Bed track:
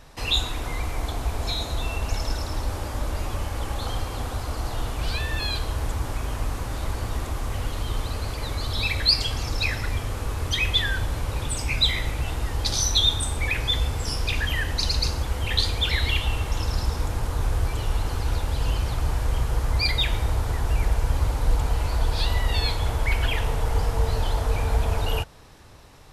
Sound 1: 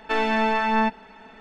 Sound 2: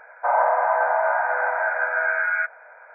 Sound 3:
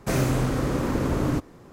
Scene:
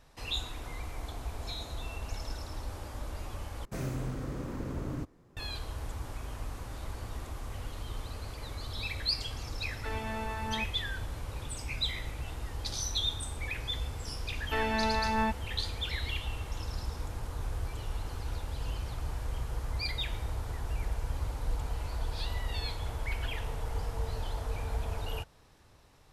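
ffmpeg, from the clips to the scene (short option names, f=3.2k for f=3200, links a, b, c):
-filter_complex "[1:a]asplit=2[a][b];[0:a]volume=-11.5dB[c];[3:a]lowshelf=f=140:g=7[d];[c]asplit=2[e][f];[e]atrim=end=3.654[g];[d]atrim=end=1.72,asetpts=PTS-STARTPTS,volume=-15dB[h];[f]atrim=start=5.366[i];[a]atrim=end=1.4,asetpts=PTS-STARTPTS,volume=-16dB,afade=t=in:d=0.004:c=hsin,afade=t=out:st=1.396:d=0.004:c=hsin,adelay=9750[j];[b]atrim=end=1.4,asetpts=PTS-STARTPTS,volume=-8.5dB,afade=t=in:d=0.004:c=hsin,afade=t=out:st=1.396:d=0.004:c=hsin,adelay=14420[k];[g][h]acrossfade=d=0.004:c1=hsin:c2=hsin[l];[l][i]acrossfade=d=0.004:c1=hsin:c2=hsin[m];[m][j][k]amix=inputs=3:normalize=0"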